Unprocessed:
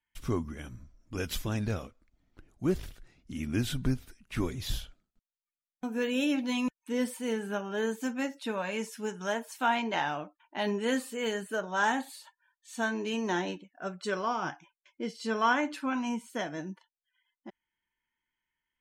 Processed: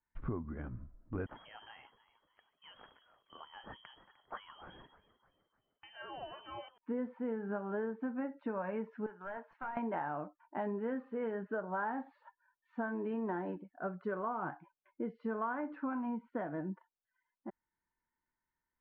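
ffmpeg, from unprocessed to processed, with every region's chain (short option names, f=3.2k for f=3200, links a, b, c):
-filter_complex "[0:a]asettb=1/sr,asplit=3[a][b][c];[a]atrim=end=1.264[d];[b]atrim=start=1.26:end=6.78,asetpts=PTS-STARTPTS,afade=t=in:d=0.004:c=qsin,afade=t=out:st=5.516:d=0.004:c=qsin,acompressor=threshold=-32dB:ratio=5:attack=3.2:release=140:knee=1:detection=peak,asplit=5[e][f][g][h][i];[f]adelay=303,afreqshift=-95,volume=-17dB[j];[g]adelay=606,afreqshift=-190,volume=-24.1dB[k];[h]adelay=909,afreqshift=-285,volume=-31.3dB[l];[i]adelay=1212,afreqshift=-380,volume=-38.4dB[m];[e][j][k][l][m]amix=inputs=5:normalize=0,atrim=end_sample=243432,lowpass=f=2.8k:t=q:w=0.5098,lowpass=f=2.8k:t=q:w=0.6013,lowpass=f=2.8k:t=q:w=0.9,lowpass=f=2.8k:t=q:w=2.563,afreqshift=-3300[n];[c]atrim=start=6.776[o];[d][n]acrossfade=d=0.004:c1=hsin:c2=qsin[p];[p][o]acrossfade=d=0.004:c1=qsin:c2=hsin,asettb=1/sr,asplit=3[q][r][s];[q]atrim=end=9.064[t];[r]atrim=start=9.06:end=9.77,asetpts=PTS-STARTPTS,afade=t=in:d=0.004:c=qsin,afade=t=out:st=0.706:d=0.004:c=qsin,highpass=f=1.2k:p=1,acompressor=threshold=-34dB:ratio=6:attack=3.2:release=140:knee=1:detection=peak,aeval=exprs='clip(val(0),-1,0.0106)':c=same[u];[s]atrim=start=9.766[v];[t][u]acrossfade=d=0.004:c1=hsin:c2=qsin[w];[w][v]acrossfade=d=0.004:c1=qsin:c2=hsin,lowpass=f=1.5k:w=0.5412,lowpass=f=1.5k:w=1.3066,acompressor=threshold=-35dB:ratio=6,volume=1dB"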